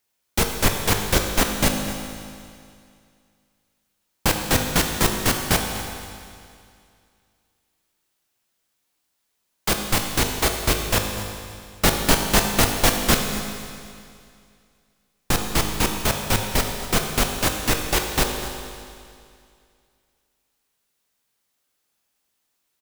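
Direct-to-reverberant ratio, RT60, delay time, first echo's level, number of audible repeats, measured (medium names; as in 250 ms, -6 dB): 3.0 dB, 2.3 s, 245 ms, -15.0 dB, 1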